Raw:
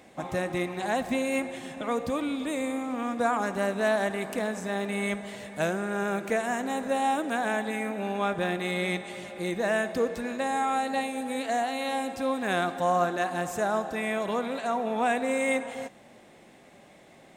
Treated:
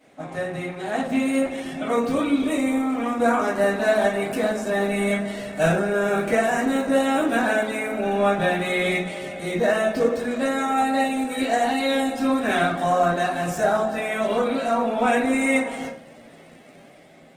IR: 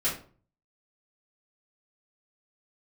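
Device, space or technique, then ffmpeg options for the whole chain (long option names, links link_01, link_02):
far-field microphone of a smart speaker: -filter_complex "[1:a]atrim=start_sample=2205[link_01];[0:a][link_01]afir=irnorm=-1:irlink=0,highpass=94,dynaudnorm=framelen=430:gausssize=5:maxgain=11.5dB,volume=-7.5dB" -ar 48000 -c:a libopus -b:a 16k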